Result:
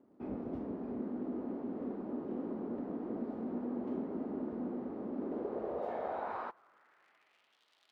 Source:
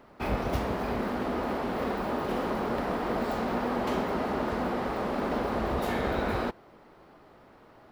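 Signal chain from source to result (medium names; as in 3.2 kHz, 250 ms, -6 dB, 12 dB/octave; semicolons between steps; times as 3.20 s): crackle 150 per s -44 dBFS; band-pass sweep 280 Hz -> 3.4 kHz, 5.16–7.62 s; trim -3 dB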